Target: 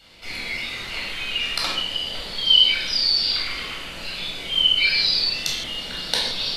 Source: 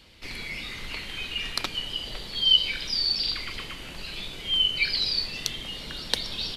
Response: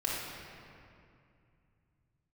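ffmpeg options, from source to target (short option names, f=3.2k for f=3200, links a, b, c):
-filter_complex "[0:a]bass=f=250:g=-8,treble=f=4k:g=0[a];[1:a]atrim=start_sample=2205,afade=t=out:st=0.36:d=0.01,atrim=end_sample=16317,asetrate=79380,aresample=44100[b];[a][b]afir=irnorm=-1:irlink=0,volume=5.5dB"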